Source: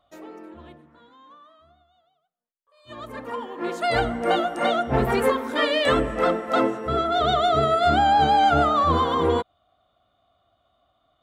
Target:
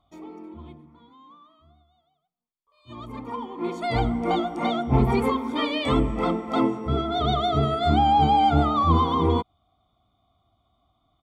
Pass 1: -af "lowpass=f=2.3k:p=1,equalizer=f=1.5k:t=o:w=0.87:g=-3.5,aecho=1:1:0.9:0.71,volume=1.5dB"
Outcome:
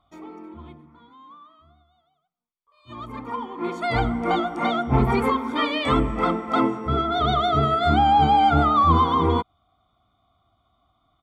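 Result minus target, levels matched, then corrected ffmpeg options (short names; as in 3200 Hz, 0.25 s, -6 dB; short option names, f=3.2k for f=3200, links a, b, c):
2000 Hz band +3.5 dB
-af "lowpass=f=2.3k:p=1,equalizer=f=1.5k:t=o:w=0.87:g=-12.5,aecho=1:1:0.9:0.71,volume=1.5dB"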